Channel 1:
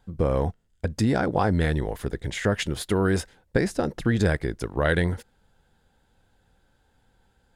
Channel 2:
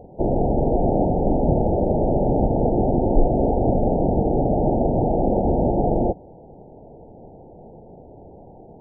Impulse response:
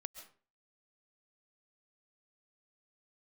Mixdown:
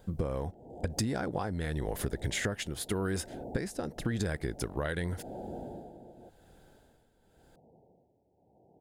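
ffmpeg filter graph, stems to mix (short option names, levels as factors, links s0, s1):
-filter_complex "[0:a]crystalizer=i=1:c=0,volume=1.33,asplit=2[s0][s1];[1:a]highpass=76,alimiter=limit=0.168:level=0:latency=1:release=16,volume=0.112,asplit=2[s2][s3];[s3]volume=0.631[s4];[s1]apad=whole_len=388454[s5];[s2][s5]sidechaincompress=threshold=0.0158:ratio=8:attack=16:release=139[s6];[s4]aecho=0:1:167:1[s7];[s0][s6][s7]amix=inputs=3:normalize=0,tremolo=f=0.91:d=0.74,acompressor=threshold=0.0398:ratio=16"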